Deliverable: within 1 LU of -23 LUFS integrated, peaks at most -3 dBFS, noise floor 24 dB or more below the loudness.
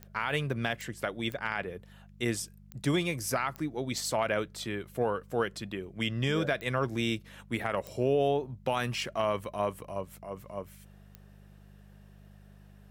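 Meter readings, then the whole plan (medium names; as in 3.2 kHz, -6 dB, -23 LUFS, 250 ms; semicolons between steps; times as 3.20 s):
clicks found 8; hum 50 Hz; highest harmonic 200 Hz; hum level -53 dBFS; loudness -32.5 LUFS; peak level -15.0 dBFS; loudness target -23.0 LUFS
-> de-click; de-hum 50 Hz, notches 4; trim +9.5 dB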